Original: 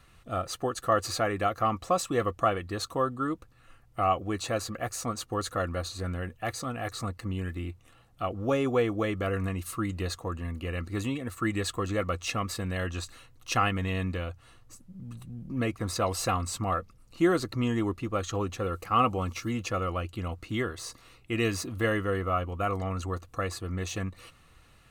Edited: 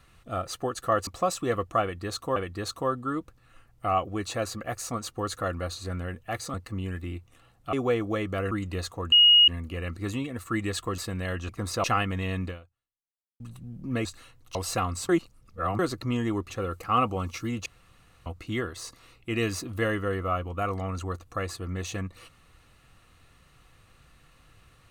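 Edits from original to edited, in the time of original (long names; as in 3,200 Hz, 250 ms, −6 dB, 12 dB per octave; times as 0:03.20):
0:01.07–0:01.75: remove
0:02.50–0:03.04: repeat, 2 plays
0:06.68–0:07.07: remove
0:08.26–0:08.61: remove
0:09.39–0:09.78: remove
0:10.39: insert tone 2,880 Hz −13 dBFS 0.36 s
0:11.89–0:12.49: remove
0:13.00–0:13.50: swap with 0:15.71–0:16.06
0:14.14–0:15.06: fade out exponential
0:16.60–0:17.30: reverse
0:18.01–0:18.52: remove
0:19.68–0:20.28: fill with room tone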